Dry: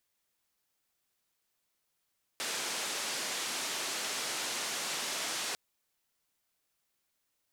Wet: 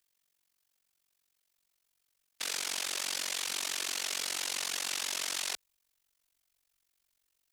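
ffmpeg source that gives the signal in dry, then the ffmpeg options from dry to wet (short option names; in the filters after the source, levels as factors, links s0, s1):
-f lavfi -i "anoisesrc=c=white:d=3.15:r=44100:seed=1,highpass=f=250,lowpass=f=7400,volume=-26.5dB"
-filter_complex "[0:a]asubboost=boost=4:cutoff=56,acrossover=split=110|790|1900[s0][s1][s2][s3];[s3]acontrast=39[s4];[s0][s1][s2][s4]amix=inputs=4:normalize=0,tremolo=f=46:d=0.974"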